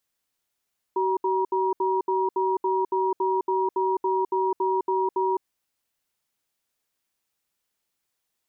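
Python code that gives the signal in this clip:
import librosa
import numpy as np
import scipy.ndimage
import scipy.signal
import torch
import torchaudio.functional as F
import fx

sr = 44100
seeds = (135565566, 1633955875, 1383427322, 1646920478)

y = fx.cadence(sr, length_s=4.47, low_hz=379.0, high_hz=953.0, on_s=0.21, off_s=0.07, level_db=-23.5)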